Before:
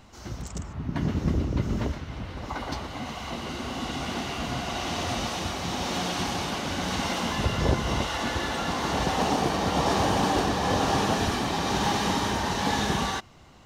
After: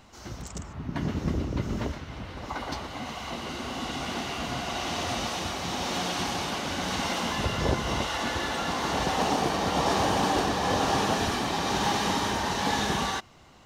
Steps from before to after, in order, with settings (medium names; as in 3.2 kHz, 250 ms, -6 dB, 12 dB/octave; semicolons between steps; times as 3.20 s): bass shelf 240 Hz -4.5 dB